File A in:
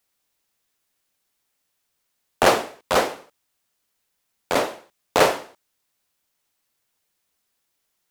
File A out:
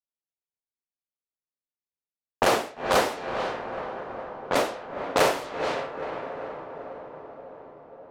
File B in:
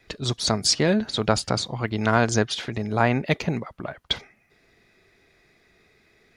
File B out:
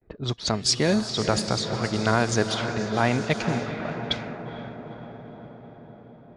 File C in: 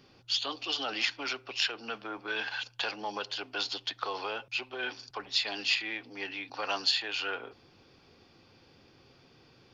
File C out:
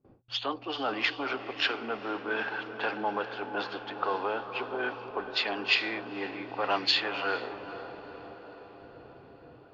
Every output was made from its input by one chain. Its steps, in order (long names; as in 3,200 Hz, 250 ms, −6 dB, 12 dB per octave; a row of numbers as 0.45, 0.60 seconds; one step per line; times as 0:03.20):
noise gate with hold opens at −49 dBFS
feedback delay with all-pass diffusion 470 ms, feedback 69%, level −8.5 dB
low-pass that shuts in the quiet parts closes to 650 Hz, open at −18 dBFS
boost into a limiter +6.5 dB
normalise the peak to −9 dBFS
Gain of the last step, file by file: −8.0, −8.0, −0.5 decibels